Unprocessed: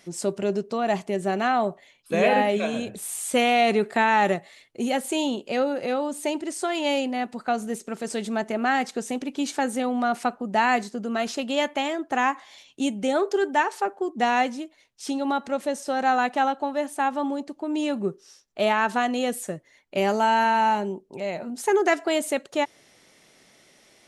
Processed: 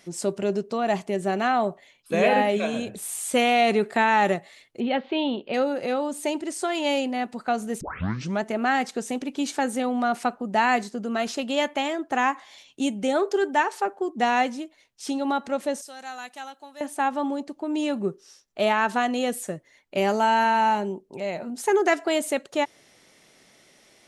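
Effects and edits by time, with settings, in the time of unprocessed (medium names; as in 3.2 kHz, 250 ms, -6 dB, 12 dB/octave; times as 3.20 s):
4.80–5.54 s: steep low-pass 4 kHz 48 dB/octave
7.81 s: tape start 0.60 s
15.81–16.81 s: pre-emphasis filter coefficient 0.9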